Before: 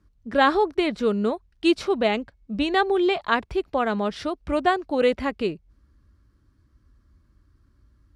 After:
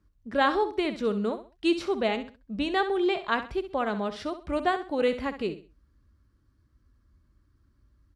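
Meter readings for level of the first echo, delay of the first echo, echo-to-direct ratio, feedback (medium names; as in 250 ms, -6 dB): -11.5 dB, 65 ms, -11.0 dB, 29%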